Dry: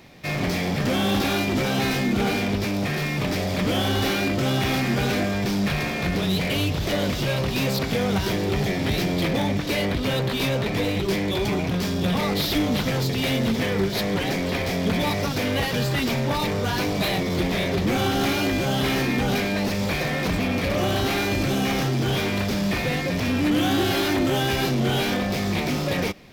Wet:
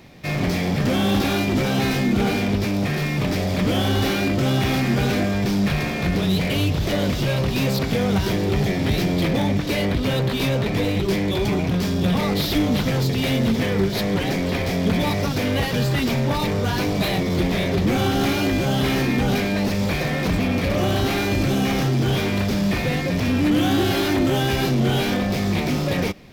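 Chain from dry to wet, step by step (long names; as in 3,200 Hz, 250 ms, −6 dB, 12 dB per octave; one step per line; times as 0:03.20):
low-shelf EQ 360 Hz +4.5 dB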